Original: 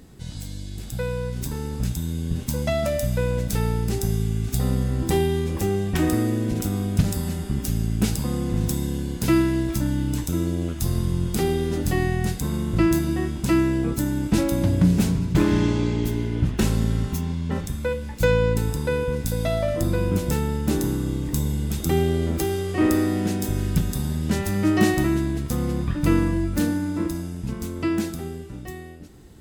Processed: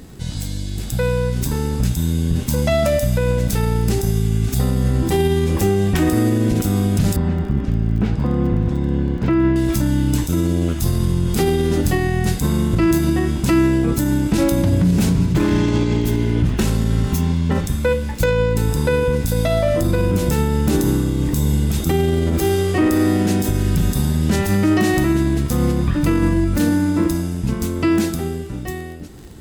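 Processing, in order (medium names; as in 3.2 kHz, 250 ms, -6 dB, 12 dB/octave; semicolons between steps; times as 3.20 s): peak limiter -16.5 dBFS, peak gain reduction 10 dB; 7.16–9.56 s: low-pass 1.9 kHz 12 dB/octave; crackle 26 per s -39 dBFS; trim +8.5 dB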